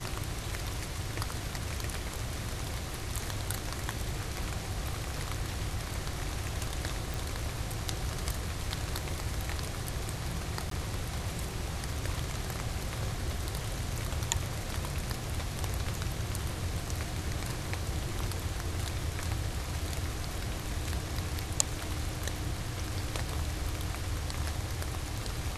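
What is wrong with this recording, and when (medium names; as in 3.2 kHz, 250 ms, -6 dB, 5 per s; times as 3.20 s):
7.14 s: pop
10.70–10.71 s: dropout 13 ms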